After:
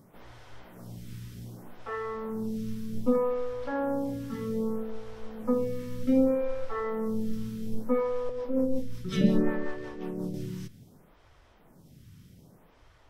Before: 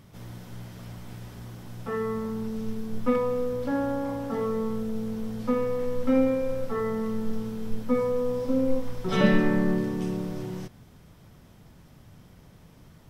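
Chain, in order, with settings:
0:08.29–0:10.34: rotating-speaker cabinet horn 5.5 Hz
phaser with staggered stages 0.64 Hz

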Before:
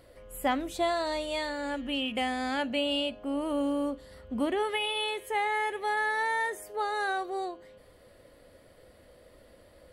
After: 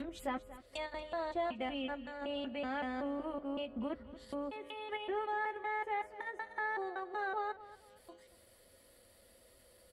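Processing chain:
slices reordered back to front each 188 ms, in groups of 4
treble cut that deepens with the level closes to 1,500 Hz, closed at −30.5 dBFS
in parallel at +1 dB: output level in coarse steps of 17 dB
on the sum: first-order pre-emphasis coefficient 0.8
notch comb filter 150 Hz
on a send: repeating echo 234 ms, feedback 28%, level −16.5 dB
on the sum: level +2.5 dB

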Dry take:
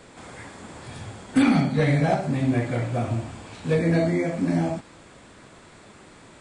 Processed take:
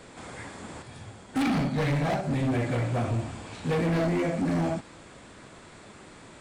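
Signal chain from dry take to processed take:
gain into a clipping stage and back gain 23 dB
0:00.82–0:02.31: expander for the loud parts 1.5 to 1, over −36 dBFS

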